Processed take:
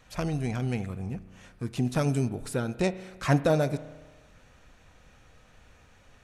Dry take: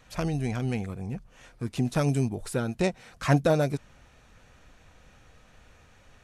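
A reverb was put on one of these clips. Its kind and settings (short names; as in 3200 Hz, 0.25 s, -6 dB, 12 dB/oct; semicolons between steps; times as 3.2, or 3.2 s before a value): spring tank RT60 1.3 s, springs 32 ms, chirp 25 ms, DRR 14.5 dB; gain -1 dB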